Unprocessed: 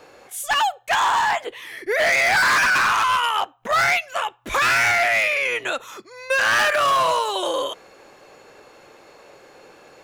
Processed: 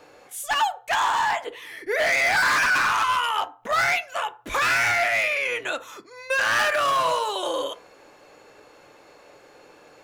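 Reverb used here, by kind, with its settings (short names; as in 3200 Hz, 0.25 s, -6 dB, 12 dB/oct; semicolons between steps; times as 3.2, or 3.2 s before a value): FDN reverb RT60 0.39 s, low-frequency decay 0.8×, high-frequency decay 0.4×, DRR 10.5 dB; gain -3.5 dB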